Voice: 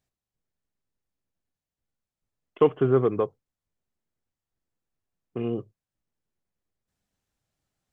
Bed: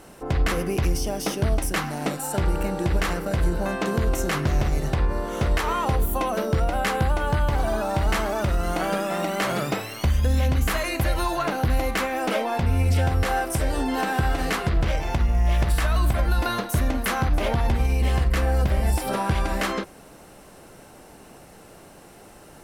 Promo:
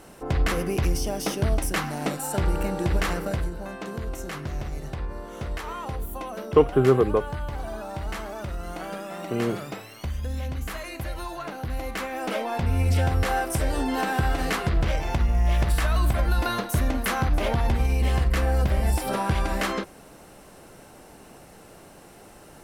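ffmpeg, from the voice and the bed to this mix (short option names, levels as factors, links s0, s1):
-filter_complex "[0:a]adelay=3950,volume=1.33[s0];[1:a]volume=2.37,afade=t=out:st=3.27:d=0.23:silence=0.375837,afade=t=in:st=11.64:d=1.31:silence=0.375837[s1];[s0][s1]amix=inputs=2:normalize=0"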